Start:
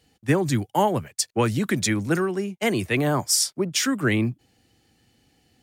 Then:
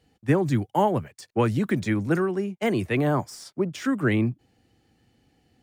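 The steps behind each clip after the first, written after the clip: de-esser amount 55%; treble shelf 2.6 kHz -9.5 dB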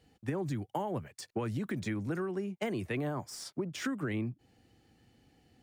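peak limiter -15.5 dBFS, peak gain reduction 6 dB; compression, threshold -31 dBFS, peak gain reduction 11 dB; trim -1 dB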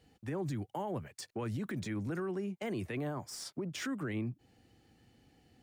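peak limiter -29.5 dBFS, peak gain reduction 8 dB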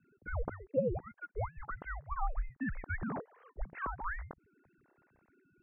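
formants replaced by sine waves; mistuned SSB -350 Hz 440–2200 Hz; trim +6.5 dB

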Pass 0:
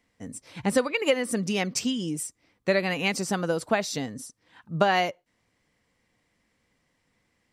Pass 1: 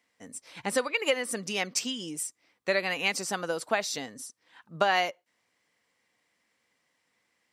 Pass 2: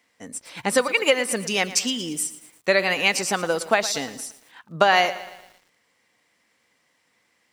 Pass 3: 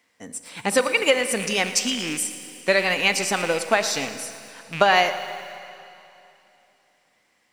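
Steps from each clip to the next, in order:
high-pass 680 Hz 6 dB/octave
bit-crushed delay 114 ms, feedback 55%, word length 8-bit, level -15 dB; trim +7.5 dB
rattle on loud lows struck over -37 dBFS, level -20 dBFS; Schroeder reverb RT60 2.9 s, combs from 29 ms, DRR 11 dB

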